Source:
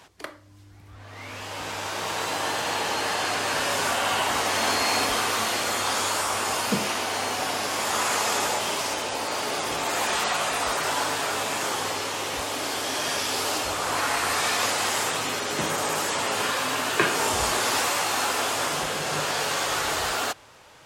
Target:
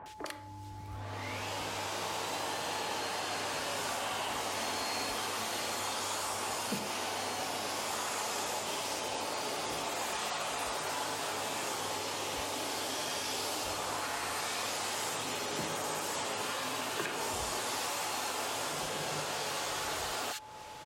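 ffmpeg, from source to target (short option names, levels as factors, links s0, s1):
-filter_complex "[0:a]acompressor=threshold=0.0126:ratio=4,acrossover=split=1600[s0][s1];[s1]adelay=60[s2];[s0][s2]amix=inputs=2:normalize=0,aeval=exprs='val(0)+0.00282*sin(2*PI*860*n/s)':c=same,volume=1.41"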